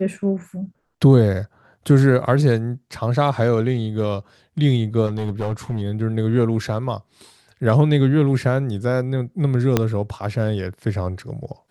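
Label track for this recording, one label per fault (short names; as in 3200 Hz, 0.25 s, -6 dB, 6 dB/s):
5.060000	5.820000	clipped -18.5 dBFS
9.770000	9.770000	pop -3 dBFS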